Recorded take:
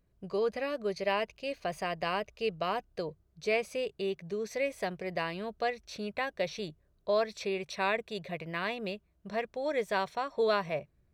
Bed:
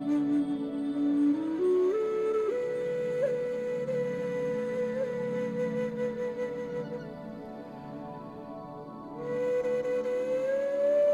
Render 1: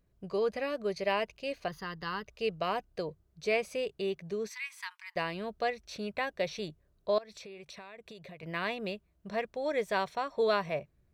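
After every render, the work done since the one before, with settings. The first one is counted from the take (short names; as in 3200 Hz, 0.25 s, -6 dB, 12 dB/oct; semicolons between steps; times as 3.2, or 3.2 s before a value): 1.68–2.27 fixed phaser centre 2400 Hz, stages 6; 4.49–5.16 Chebyshev high-pass 890 Hz, order 8; 7.18–8.43 compressor 12:1, threshold -44 dBFS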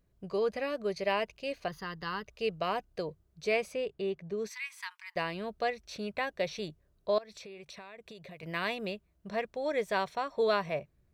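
3.71–4.37 high shelf 5200 Hz -> 2900 Hz -12 dB; 8.31–8.86 high shelf 4700 Hz +7 dB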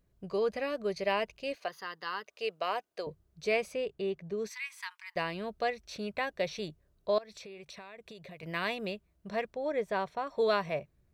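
1.55–3.07 HPF 440 Hz; 9.54–10.27 high shelf 2200 Hz -10.5 dB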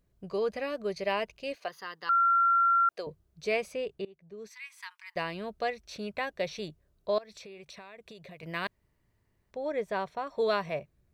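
2.09–2.89 bleep 1370 Hz -20.5 dBFS; 4.05–5.18 fade in, from -24 dB; 8.67–9.51 room tone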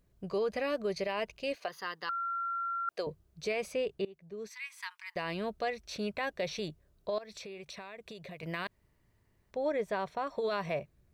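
negative-ratio compressor -28 dBFS, ratio -0.5; limiter -24.5 dBFS, peak gain reduction 9 dB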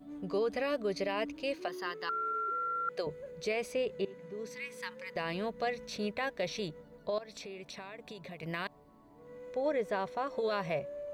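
add bed -18 dB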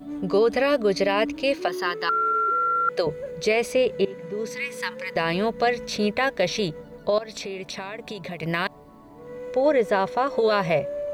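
gain +12 dB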